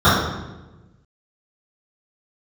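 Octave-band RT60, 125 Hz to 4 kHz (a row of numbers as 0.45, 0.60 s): 1.6, 1.5, 1.2, 0.95, 0.90, 0.80 s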